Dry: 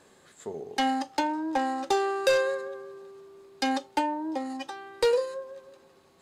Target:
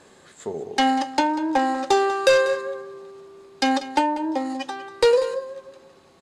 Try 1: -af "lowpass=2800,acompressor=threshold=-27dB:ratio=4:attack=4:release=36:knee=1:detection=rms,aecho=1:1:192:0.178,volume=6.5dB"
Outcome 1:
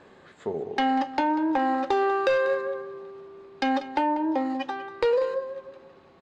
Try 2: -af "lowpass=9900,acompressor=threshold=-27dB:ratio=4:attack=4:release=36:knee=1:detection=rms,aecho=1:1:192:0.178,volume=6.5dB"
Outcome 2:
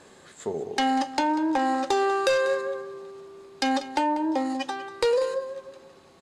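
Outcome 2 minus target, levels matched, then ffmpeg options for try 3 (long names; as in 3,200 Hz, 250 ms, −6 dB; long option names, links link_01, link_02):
downward compressor: peak gain reduction +7 dB
-af "lowpass=9900,aecho=1:1:192:0.178,volume=6.5dB"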